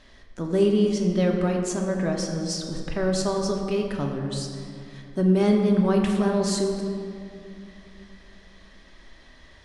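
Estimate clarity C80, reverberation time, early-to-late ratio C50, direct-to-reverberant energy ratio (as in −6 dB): 5.0 dB, 2.6 s, 4.0 dB, 1.0 dB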